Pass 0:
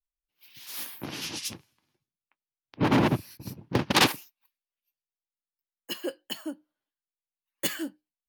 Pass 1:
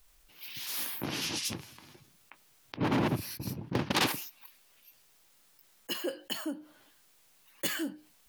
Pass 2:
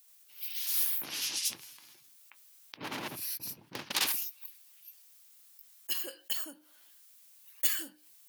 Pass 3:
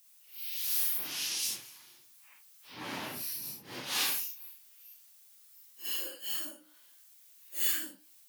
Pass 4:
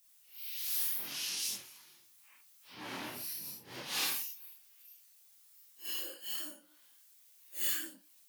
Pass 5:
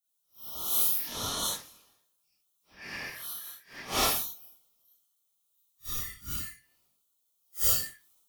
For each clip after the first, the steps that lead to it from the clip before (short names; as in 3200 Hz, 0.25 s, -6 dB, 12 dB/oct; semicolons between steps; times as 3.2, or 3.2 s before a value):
fast leveller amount 50%; gain -8 dB
tilt +4 dB/oct; gain -8 dB
phase scrambler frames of 0.2 s
chorus voices 4, 0.78 Hz, delay 24 ms, depth 3.2 ms
four-band scrambler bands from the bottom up 3142; three-band expander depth 70%; gain +3.5 dB